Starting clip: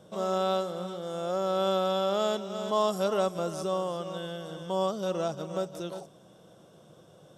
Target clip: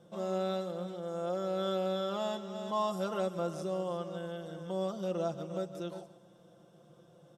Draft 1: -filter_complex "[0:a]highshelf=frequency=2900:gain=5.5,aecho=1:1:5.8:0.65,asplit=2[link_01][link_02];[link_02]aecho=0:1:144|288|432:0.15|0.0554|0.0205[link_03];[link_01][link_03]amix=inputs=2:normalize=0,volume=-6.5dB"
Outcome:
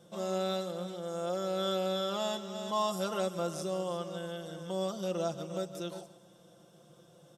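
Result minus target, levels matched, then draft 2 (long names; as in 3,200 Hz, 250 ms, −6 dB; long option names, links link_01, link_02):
8,000 Hz band +8.0 dB
-filter_complex "[0:a]highshelf=frequency=2900:gain=-4.5,aecho=1:1:5.8:0.65,asplit=2[link_01][link_02];[link_02]aecho=0:1:144|288|432:0.15|0.0554|0.0205[link_03];[link_01][link_03]amix=inputs=2:normalize=0,volume=-6.5dB"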